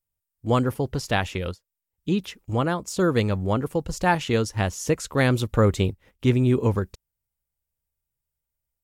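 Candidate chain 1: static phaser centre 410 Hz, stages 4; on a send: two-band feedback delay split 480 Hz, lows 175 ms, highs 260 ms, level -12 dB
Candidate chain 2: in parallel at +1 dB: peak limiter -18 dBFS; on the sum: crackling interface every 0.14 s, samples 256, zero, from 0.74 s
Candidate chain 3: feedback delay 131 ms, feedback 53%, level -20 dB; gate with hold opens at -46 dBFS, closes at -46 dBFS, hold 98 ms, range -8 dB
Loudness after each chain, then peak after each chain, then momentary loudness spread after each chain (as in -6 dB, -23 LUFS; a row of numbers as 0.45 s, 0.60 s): -27.5 LUFS, -20.0 LUFS, -24.0 LUFS; -10.0 dBFS, -5.0 dBFS, -7.5 dBFS; 11 LU, 7 LU, 8 LU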